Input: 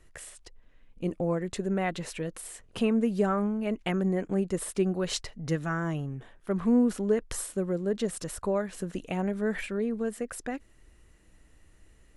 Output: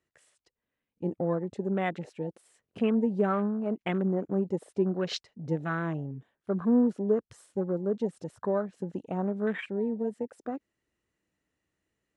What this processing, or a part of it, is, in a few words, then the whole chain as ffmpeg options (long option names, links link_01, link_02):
over-cleaned archive recording: -af "highpass=130,lowpass=7300,afwtdn=0.0112"